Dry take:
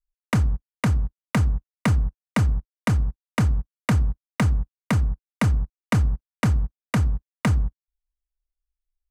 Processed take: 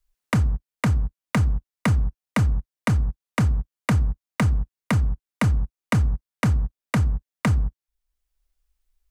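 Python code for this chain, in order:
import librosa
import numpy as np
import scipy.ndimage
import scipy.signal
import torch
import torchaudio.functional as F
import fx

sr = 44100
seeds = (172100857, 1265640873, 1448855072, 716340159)

y = fx.band_squash(x, sr, depth_pct=40)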